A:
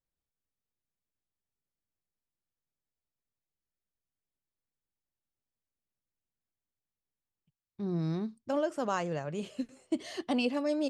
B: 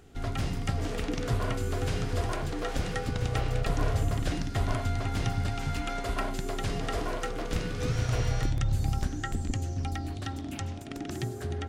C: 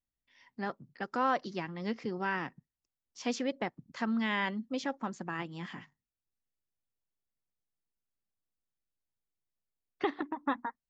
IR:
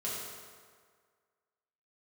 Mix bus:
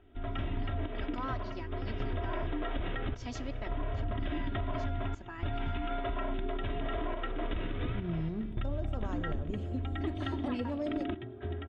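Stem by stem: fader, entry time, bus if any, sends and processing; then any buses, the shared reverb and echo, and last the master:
-6.0 dB, 0.15 s, no bus, send -13 dB, tilt shelf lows +5.5 dB, about 680 Hz
-2.5 dB, 0.00 s, bus A, no send, random-step tremolo, depth 95%; Chebyshev low-pass 3.7 kHz, order 8; level rider gain up to 8.5 dB
-10.0 dB, 0.00 s, bus A, send -22.5 dB, treble shelf 4.7 kHz +7.5 dB
bus A: 0.0 dB, comb 3.1 ms, depth 69%; peak limiter -20.5 dBFS, peak gain reduction 10 dB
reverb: on, RT60 1.8 s, pre-delay 4 ms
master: treble shelf 4.7 kHz -7 dB; compression, threshold -30 dBFS, peak gain reduction 8 dB

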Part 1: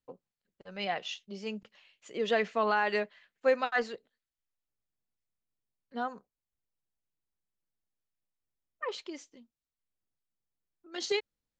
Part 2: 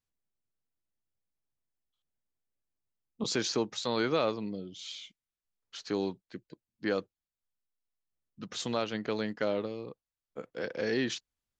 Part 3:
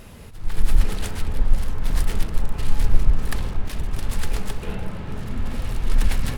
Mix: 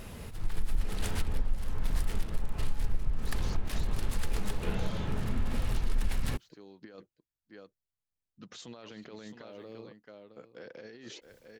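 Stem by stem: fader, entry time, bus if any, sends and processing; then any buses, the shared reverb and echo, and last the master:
-16.0 dB, 0.00 s, bus A, no send, no echo send, compression, threshold -38 dBFS, peak gain reduction 16 dB; whisper effect; decay stretcher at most 63 dB/s
-9.0 dB, 0.00 s, bus A, no send, echo send -11.5 dB, none
-1.5 dB, 0.00 s, no bus, no send, no echo send, none
bus A: 0.0 dB, compressor with a negative ratio -43 dBFS, ratio -0.5; peak limiter -36.5 dBFS, peak gain reduction 9 dB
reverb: none
echo: delay 666 ms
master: compression 4:1, threshold -24 dBFS, peak gain reduction 15 dB

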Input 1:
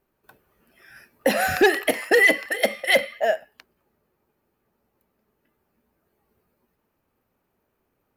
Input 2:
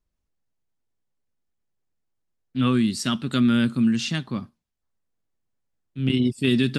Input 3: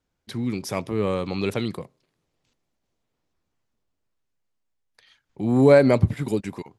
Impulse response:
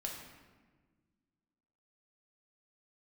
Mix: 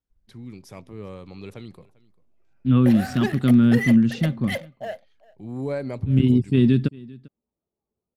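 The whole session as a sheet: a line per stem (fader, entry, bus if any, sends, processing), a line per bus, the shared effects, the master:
-13.0 dB, 1.60 s, no send, echo send -23.5 dB, local Wiener filter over 25 samples; waveshaping leveller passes 1
-3.5 dB, 0.10 s, no send, echo send -23.5 dB, tilt EQ -3.5 dB/octave
-15.0 dB, 0.00 s, no send, echo send -23 dB, bass shelf 130 Hz +9 dB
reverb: none
echo: delay 396 ms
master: none

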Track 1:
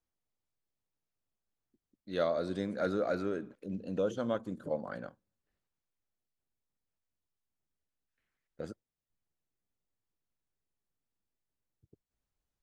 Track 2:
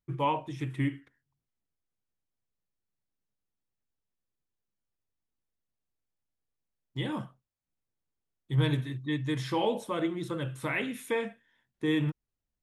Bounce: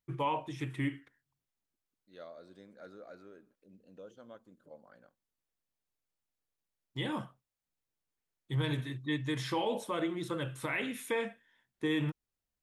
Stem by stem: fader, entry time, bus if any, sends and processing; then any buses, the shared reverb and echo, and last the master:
-17.0 dB, 0.00 s, no send, none
+0.5 dB, 0.00 s, no send, none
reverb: none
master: bass shelf 290 Hz -6 dB; peak limiter -23.5 dBFS, peak gain reduction 6 dB

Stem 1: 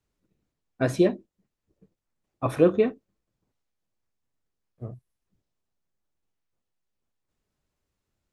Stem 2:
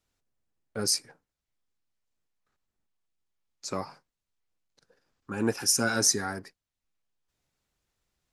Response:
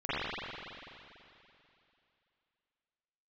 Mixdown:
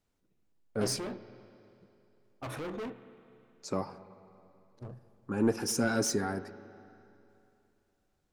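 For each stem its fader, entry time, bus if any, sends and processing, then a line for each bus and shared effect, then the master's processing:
-3.5 dB, 0.00 s, send -23.5 dB, peak limiter -18 dBFS, peak gain reduction 11 dB; hard clipper -32.5 dBFS, distortion -5 dB
-1.5 dB, 0.00 s, send -24 dB, saturation -19.5 dBFS, distortion -14 dB; tilt shelf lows +6 dB, about 910 Hz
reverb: on, RT60 2.8 s, pre-delay 41 ms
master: peaking EQ 68 Hz -4.5 dB 2.4 oct

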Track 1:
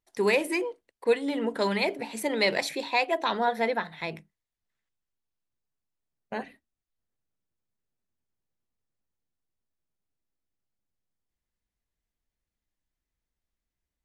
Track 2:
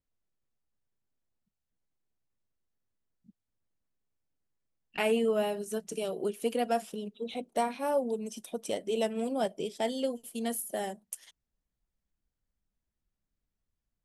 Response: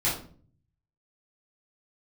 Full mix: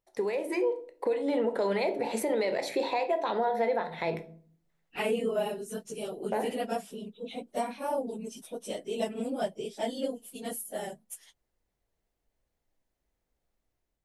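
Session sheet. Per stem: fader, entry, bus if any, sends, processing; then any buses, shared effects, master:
-7.0 dB, 0.00 s, send -18 dB, compression 12:1, threshold -32 dBFS, peak gain reduction 15 dB; peaking EQ 550 Hz +12.5 dB 1.8 oct; level rider gain up to 7 dB
-2.0 dB, 0.00 s, no send, phase randomisation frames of 50 ms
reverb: on, RT60 0.45 s, pre-delay 3 ms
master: peak limiter -19.5 dBFS, peak gain reduction 6 dB

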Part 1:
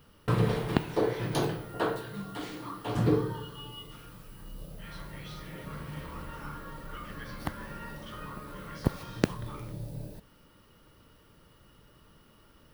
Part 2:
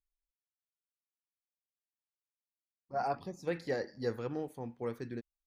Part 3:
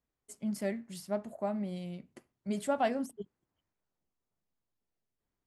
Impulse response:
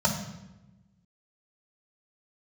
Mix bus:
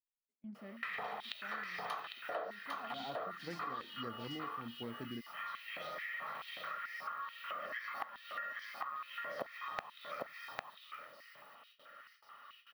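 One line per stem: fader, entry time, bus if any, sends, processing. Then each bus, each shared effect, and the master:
+1.5 dB, 0.55 s, no send, echo send -6 dB, treble shelf 2.8 kHz -6 dB; comb 1.6 ms, depth 50%; step-sequenced high-pass 4.6 Hz 600–4900 Hz
-4.5 dB, 0.00 s, no send, no echo send, none
-16.5 dB, 0.00 s, no send, no echo send, low-pass 3.4 kHz 6 dB/octave; bass shelf 130 Hz -11 dB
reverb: none
echo: delay 802 ms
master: gate with hold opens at -51 dBFS; ten-band graphic EQ 250 Hz +7 dB, 500 Hz -6 dB, 2 kHz +4 dB, 8 kHz -11 dB; compression 5:1, threshold -40 dBFS, peak gain reduction 18.5 dB

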